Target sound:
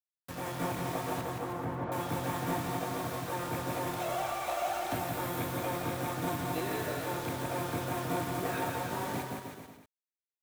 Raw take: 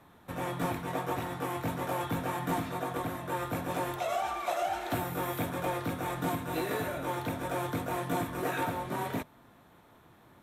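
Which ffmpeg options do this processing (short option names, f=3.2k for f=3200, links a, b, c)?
-filter_complex "[0:a]acrusher=bits=6:mix=0:aa=0.000001,asettb=1/sr,asplit=3[a][b][c];[a]atrim=end=1.214[d];[b]atrim=start=1.21:end=1.92,asetpts=PTS-STARTPTS,afade=t=in:d=0.004:c=qsin,afade=t=out:st=0.706:d=0.004:c=qsin,lowpass=1.5k[e];[c]atrim=start=1.916[f];[d][e]acrossfade=d=0.004:c1=hsin:c2=qsin[g];[g][f]acrossfade=d=0.004:c1=qsin:c2=hsin,aecho=1:1:170|314.5|437.3|541.7|630.5:0.631|0.398|0.251|0.158|0.1,volume=-3.5dB"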